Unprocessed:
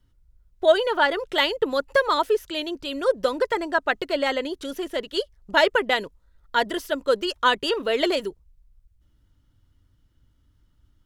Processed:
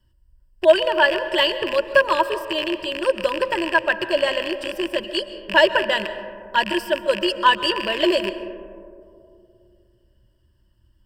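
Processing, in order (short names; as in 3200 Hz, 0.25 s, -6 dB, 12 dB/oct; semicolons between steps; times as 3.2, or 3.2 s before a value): rattling part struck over -40 dBFS, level -15 dBFS; ripple EQ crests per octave 1.3, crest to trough 15 dB; digital reverb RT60 2.5 s, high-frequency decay 0.25×, pre-delay 90 ms, DRR 11.5 dB; gain -1 dB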